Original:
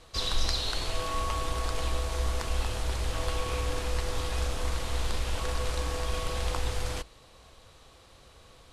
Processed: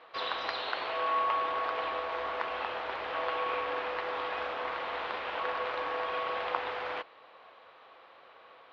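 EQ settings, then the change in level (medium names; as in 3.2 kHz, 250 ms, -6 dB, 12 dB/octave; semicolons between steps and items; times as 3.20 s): band-pass 680–2900 Hz; distance through air 330 m; +8.0 dB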